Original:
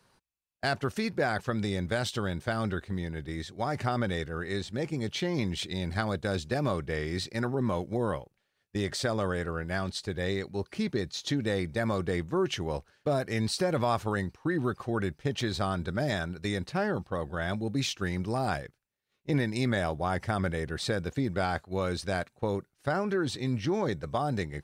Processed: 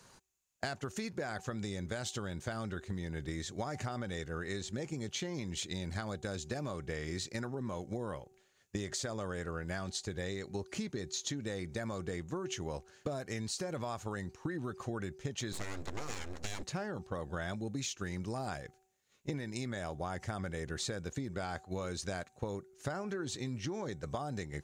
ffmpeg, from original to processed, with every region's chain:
-filter_complex "[0:a]asettb=1/sr,asplit=3[a][b][c];[a]atrim=end=15.524[d];[b]atrim=start=15.52:end=16.63,asetpts=PTS-STARTPTS,afade=t=in:d=0.004:c=qsin,afade=t=out:st=1.106:d=0.004:c=qsin,bandreject=f=50:t=h:w=6,bandreject=f=100:t=h:w=6,bandreject=f=150:t=h:w=6,bandreject=f=200:t=h:w=6,bandreject=f=250:t=h:w=6,bandreject=f=300:t=h:w=6,bandreject=f=350:t=h:w=6,bandreject=f=400:t=h:w=6,aeval=exprs='abs(val(0))':c=same[e];[c]atrim=start=16.626[f];[d][e]acrossfade=d=0.004:c1=hsin:c2=qsin[g];[g][f]acrossfade=d=0.004:c1=qsin:c2=hsin,equalizer=f=6.8k:w=3.2:g=13,bandreject=f=379.3:t=h:w=4,bandreject=f=758.6:t=h:w=4,acompressor=threshold=-40dB:ratio=12,volume=5dB"

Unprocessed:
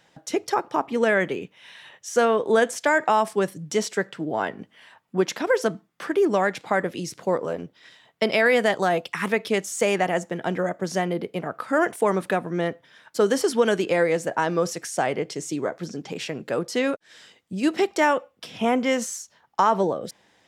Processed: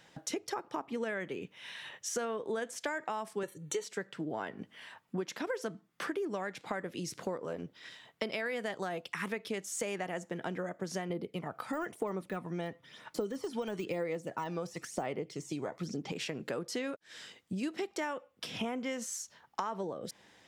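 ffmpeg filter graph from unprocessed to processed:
-filter_complex "[0:a]asettb=1/sr,asplit=3[a][b][c];[a]atrim=end=3.434[d];[b]atrim=start=3.43:end=3.84,asetpts=PTS-STARTPTS,afade=t=in:d=0.004:c=qsin,afade=t=out:st=0.406:d=0.004:c=qsin,asuperstop=centerf=5100:order=20:qfactor=4.8,bass=f=250:g=-4,treble=f=4k:g=-1,aecho=1:1:2.2:0.89,atrim=end_sample=18081[e];[c]atrim=start=3.836[f];[d][e]acrossfade=d=0.004:c1=hsin:c2=qsin[g];[g][f]acrossfade=d=0.004:c1=qsin:c2=hsin,asettb=1/sr,asplit=3[h][i][j];[h]atrim=end=11.104[k];[i]atrim=start=11.1:end=16.12,asetpts=PTS-STARTPTS,afade=t=in:d=0.004:c=qsin,afade=t=out:st=5.016:d=0.004:c=qsin,deesser=0.9,bandreject=f=1.6k:w=7,aphaser=in_gain=1:out_gain=1:delay=1.3:decay=0.44:speed=1:type=sinusoidal[l];[j]atrim=start=16.116[m];[k][l]acrossfade=d=0.004:c1=hsin:c2=qsin[n];[n][m]acrossfade=d=0.004:c1=qsin:c2=hsin,equalizer=f=700:w=1.5:g=-2.5,acompressor=threshold=-35dB:ratio=5"

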